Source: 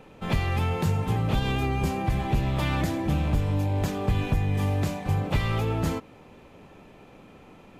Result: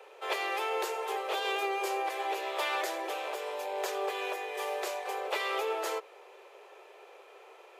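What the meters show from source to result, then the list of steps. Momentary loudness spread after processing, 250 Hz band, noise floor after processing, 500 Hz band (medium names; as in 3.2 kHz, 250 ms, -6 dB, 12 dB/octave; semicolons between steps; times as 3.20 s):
22 LU, -19.0 dB, -55 dBFS, -0.5 dB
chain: steep high-pass 370 Hz 96 dB/octave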